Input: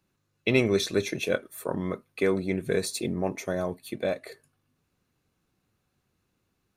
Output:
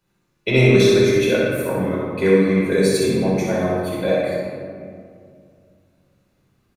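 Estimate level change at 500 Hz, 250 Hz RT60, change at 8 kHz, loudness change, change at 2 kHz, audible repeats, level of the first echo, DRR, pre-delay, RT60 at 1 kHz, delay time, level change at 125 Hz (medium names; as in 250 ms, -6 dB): +11.5 dB, 2.9 s, +6.5 dB, +11.0 dB, +9.0 dB, 1, -2.5 dB, -7.5 dB, 5 ms, 2.1 s, 63 ms, +13.5 dB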